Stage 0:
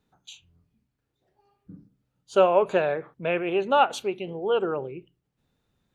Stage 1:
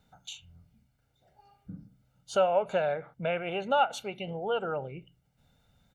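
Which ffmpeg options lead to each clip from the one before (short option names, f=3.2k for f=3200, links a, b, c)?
-af "aecho=1:1:1.4:0.66,acompressor=threshold=-49dB:ratio=1.5,volume=4.5dB"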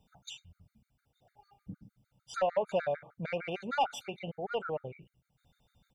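-af "asoftclip=type=tanh:threshold=-20dB,afftfilt=real='re*gt(sin(2*PI*6.6*pts/sr)*(1-2*mod(floor(b*sr/1024/1200),2)),0)':imag='im*gt(sin(2*PI*6.6*pts/sr)*(1-2*mod(floor(b*sr/1024/1200),2)),0)':win_size=1024:overlap=0.75"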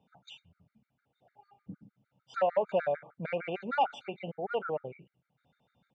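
-af "highpass=160,lowpass=2.5k,volume=2dB"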